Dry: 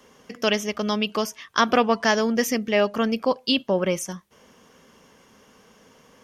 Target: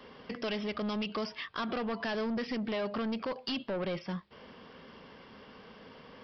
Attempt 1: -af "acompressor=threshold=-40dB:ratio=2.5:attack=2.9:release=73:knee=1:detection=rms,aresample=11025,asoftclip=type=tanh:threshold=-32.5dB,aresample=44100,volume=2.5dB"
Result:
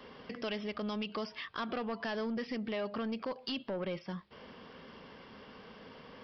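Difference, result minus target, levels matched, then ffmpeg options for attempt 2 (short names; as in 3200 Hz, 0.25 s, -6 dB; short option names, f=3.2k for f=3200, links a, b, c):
compressor: peak gain reduction +5.5 dB
-af "acompressor=threshold=-30.5dB:ratio=2.5:attack=2.9:release=73:knee=1:detection=rms,aresample=11025,asoftclip=type=tanh:threshold=-32.5dB,aresample=44100,volume=2.5dB"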